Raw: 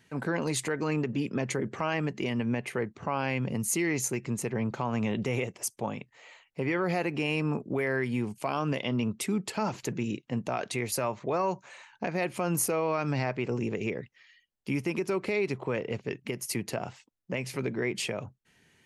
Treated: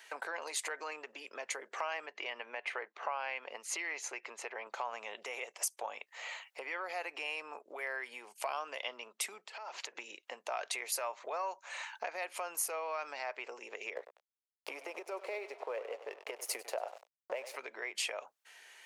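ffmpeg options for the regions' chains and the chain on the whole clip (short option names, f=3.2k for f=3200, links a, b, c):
-filter_complex "[0:a]asettb=1/sr,asplit=3[a][b][c];[a]atrim=end=2.064[d];[b]atrim=start=2.06:end=4.67,asetpts=PTS-STARTPTS,afade=t=in:d=0.004:c=qsin,afade=t=out:st=2.606:d=0.004:c=qsin,highpass=100,lowpass=3.8k,lowshelf=f=220:g=-8.5[e];[c]atrim=start=4.666[f];[d][e]acrossfade=d=0.004:c1=hsin:c2=qsin[g];[g][f]acrossfade=d=0.004:c1=qsin:c2=hsin,asettb=1/sr,asplit=3[h][i][j];[h]atrim=end=9.474[k];[i]atrim=start=9.47:end=9.98,asetpts=PTS-STARTPTS,afade=t=in:d=0.004:c=qsin,afade=t=out:st=0.506:d=0.004:c=qsin,acompressor=threshold=-43dB:ratio=20:attack=3.2:release=140:knee=1:detection=peak,highpass=280,lowpass=5.3k[l];[j]atrim=start=9.976[m];[k][l]acrossfade=d=0.004:c1=hsin:c2=qsin[n];[n][m]acrossfade=d=0.004:c1=qsin:c2=hsin,asettb=1/sr,asplit=3[o][p][q];[o]atrim=end=13.964[r];[p]atrim=start=13.96:end=17.56,asetpts=PTS-STARTPTS,afade=t=in:d=0.004:c=qsin,afade=t=out:st=3.596:d=0.004:c=qsin,aecho=1:1:97|194|291|388:0.237|0.0996|0.0418|0.0176,atrim=end_sample=158760,aeval=exprs='sgn(val(0))*max(abs(val(0))-0.00501,0)':c=same,equalizer=f=530:t=o:w=1.7:g=14.5[s];[q]atrim=start=17.556[t];[r][s]acrossfade=d=0.004:c1=hsin:c2=qsin[u];[u][t]acrossfade=d=0.004:c1=qsin:c2=hsin,acompressor=threshold=-42dB:ratio=5,highpass=f=600:w=0.5412,highpass=f=600:w=1.3066,volume=9dB"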